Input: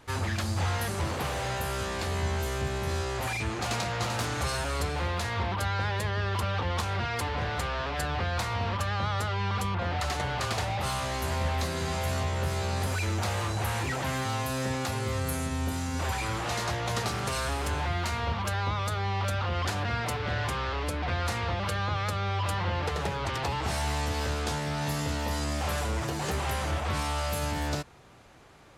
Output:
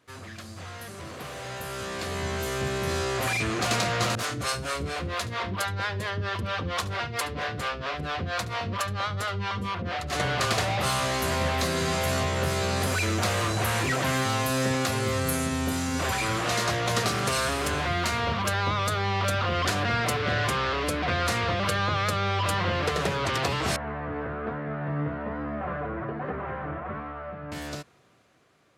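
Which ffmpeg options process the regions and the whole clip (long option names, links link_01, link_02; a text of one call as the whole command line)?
ffmpeg -i in.wav -filter_complex "[0:a]asettb=1/sr,asplit=3[link_01][link_02][link_03];[link_01]atrim=end=4.154[link_04];[link_02]atrim=start=4.15:end=10.13,asetpts=PTS-STARTPTS,afade=type=in:duration=0.004:curve=qsin,afade=type=out:start_time=5.976:duration=0.004:curve=qsin,acrossover=split=430[link_05][link_06];[link_05]aeval=exprs='val(0)*(1-1/2+1/2*cos(2*PI*4.4*n/s))':channel_layout=same[link_07];[link_06]aeval=exprs='val(0)*(1-1/2-1/2*cos(2*PI*4.4*n/s))':channel_layout=same[link_08];[link_07][link_08]amix=inputs=2:normalize=0,aecho=1:1:72:0.141,atrim=end_sample=263718[link_09];[link_03]atrim=start=10.126[link_10];[link_04][link_09]acrossfade=duration=0.004:curve1=hsin:curve2=qsin[link_11];[link_11][link_10]acrossfade=duration=0.004:curve1=qsin:curve2=hsin,asettb=1/sr,asplit=3[link_12][link_13][link_14];[link_12]atrim=end=23.764[link_15];[link_13]atrim=start=23.76:end=27.52,asetpts=PTS-STARTPTS,afade=type=in:duration=0.004:curve=qsin,afade=type=out:start_time=3.756:duration=0.004:curve=qsin,lowpass=frequency=1700:width=0.5412,lowpass=frequency=1700:width=1.3066,flanger=delay=3.6:depth=3.3:regen=48:speed=1.2:shape=triangular[link_16];[link_14]atrim=start=27.516[link_17];[link_15][link_16]acrossfade=duration=0.004:curve1=hsin:curve2=qsin[link_18];[link_18][link_17]acrossfade=duration=0.004:curve1=qsin:curve2=hsin,highpass=120,bandreject=frequency=860:width=5.4,dynaudnorm=framelen=250:gausssize=17:maxgain=16dB,volume=-9dB" out.wav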